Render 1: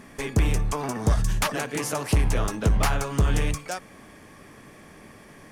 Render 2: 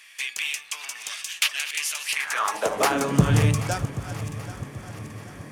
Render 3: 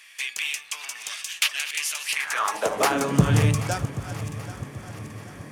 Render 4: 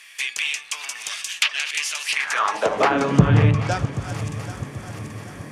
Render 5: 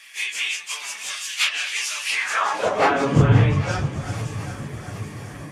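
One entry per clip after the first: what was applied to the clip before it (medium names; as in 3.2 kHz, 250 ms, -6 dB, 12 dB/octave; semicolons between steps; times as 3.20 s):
backward echo that repeats 391 ms, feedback 67%, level -13 dB; high-pass sweep 2.7 kHz -> 110 Hz, 2.07–3.35 s; trim +3 dB
high-pass 46 Hz
low-pass that closes with the level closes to 2.6 kHz, closed at -17 dBFS; trim +4 dB
phase randomisation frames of 100 ms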